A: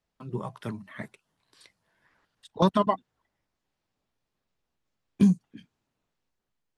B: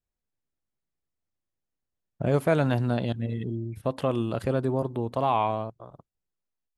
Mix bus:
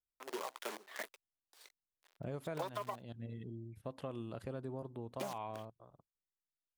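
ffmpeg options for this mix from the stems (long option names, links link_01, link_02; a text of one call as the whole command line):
ffmpeg -i stem1.wav -i stem2.wav -filter_complex "[0:a]acrusher=bits=7:dc=4:mix=0:aa=0.000001,asoftclip=type=hard:threshold=-16.5dB,highpass=frequency=390:width=0.5412,highpass=frequency=390:width=1.3066,volume=-1dB[link_01];[1:a]volume=-15dB[link_02];[link_01][link_02]amix=inputs=2:normalize=0,acompressor=threshold=-37dB:ratio=10" out.wav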